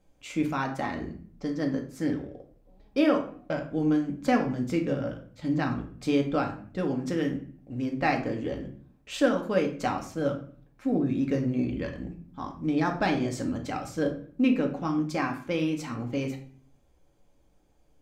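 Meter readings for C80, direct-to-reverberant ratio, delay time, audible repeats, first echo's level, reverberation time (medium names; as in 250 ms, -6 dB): 14.0 dB, 2.0 dB, no echo, no echo, no echo, 0.50 s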